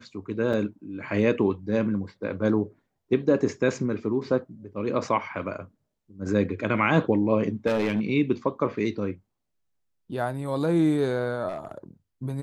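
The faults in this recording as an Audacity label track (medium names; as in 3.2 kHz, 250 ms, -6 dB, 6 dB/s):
0.530000	0.530000	dropout 4.6 ms
7.660000	8.070000	clipped -20 dBFS
11.480000	11.780000	clipped -27.5 dBFS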